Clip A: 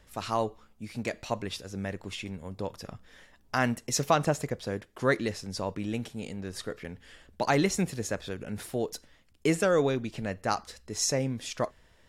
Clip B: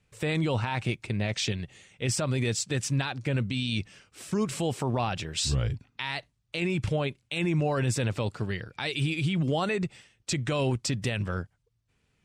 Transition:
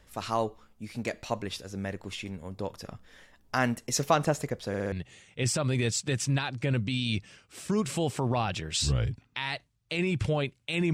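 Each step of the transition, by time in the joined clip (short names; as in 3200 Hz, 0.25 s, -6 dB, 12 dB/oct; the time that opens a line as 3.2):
clip A
4.68 stutter in place 0.06 s, 4 plays
4.92 switch to clip B from 1.55 s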